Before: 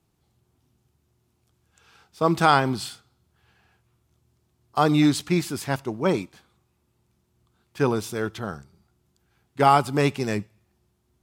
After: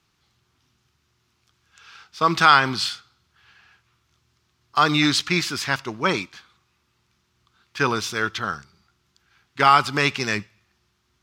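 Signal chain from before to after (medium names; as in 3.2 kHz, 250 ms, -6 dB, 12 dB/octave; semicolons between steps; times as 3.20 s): high-order bell 2.6 kHz +13 dB 2.9 oct; in parallel at -0.5 dB: peak limiter -6.5 dBFS, peak gain reduction 11 dB; on the sum: trim -8 dB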